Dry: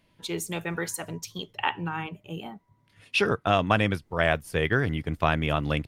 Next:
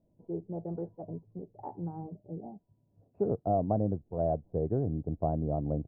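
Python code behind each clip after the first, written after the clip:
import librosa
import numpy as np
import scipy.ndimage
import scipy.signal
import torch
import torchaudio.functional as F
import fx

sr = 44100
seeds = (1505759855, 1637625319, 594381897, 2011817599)

y = scipy.signal.sosfilt(scipy.signal.ellip(4, 1.0, 80, 720.0, 'lowpass', fs=sr, output='sos'), x)
y = y * 10.0 ** (-3.5 / 20.0)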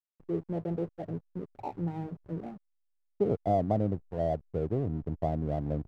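y = fx.rider(x, sr, range_db=3, speed_s=2.0)
y = fx.backlash(y, sr, play_db=-43.5)
y = y * 10.0 ** (1.5 / 20.0)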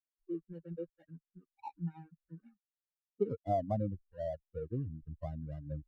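y = fx.bin_expand(x, sr, power=3.0)
y = y * 10.0 ** (-1.5 / 20.0)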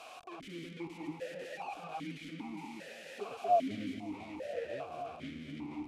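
y = fx.delta_mod(x, sr, bps=64000, step_db=-32.5)
y = fx.echo_split(y, sr, split_hz=620.0, low_ms=238, high_ms=495, feedback_pct=52, wet_db=-4.0)
y = fx.vowel_held(y, sr, hz=2.5)
y = y * 10.0 ** (7.0 / 20.0)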